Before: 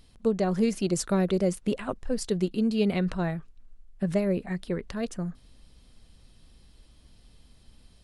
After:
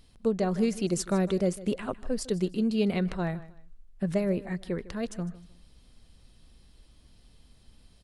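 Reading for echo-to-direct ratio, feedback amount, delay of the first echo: −17.0 dB, 27%, 154 ms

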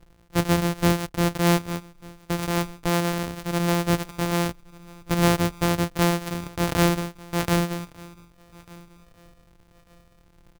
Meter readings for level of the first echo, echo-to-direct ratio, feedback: −23.5 dB, −23.0 dB, 29%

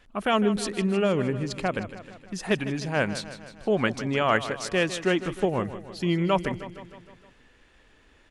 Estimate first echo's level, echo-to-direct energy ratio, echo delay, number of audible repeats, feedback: −13.0 dB, −11.0 dB, 155 ms, 5, 59%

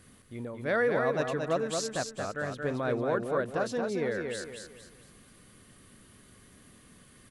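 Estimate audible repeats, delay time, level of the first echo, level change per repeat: 4, 226 ms, −4.5 dB, −9.0 dB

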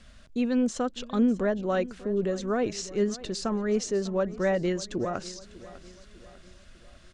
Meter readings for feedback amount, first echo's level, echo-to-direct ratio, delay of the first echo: 47%, −18.0 dB, −17.0 dB, 599 ms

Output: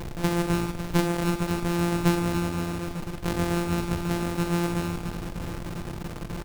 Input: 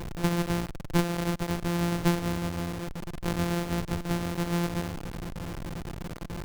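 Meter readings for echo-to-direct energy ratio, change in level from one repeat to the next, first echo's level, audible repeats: −5.0 dB, repeats not evenly spaced, −10.0 dB, 3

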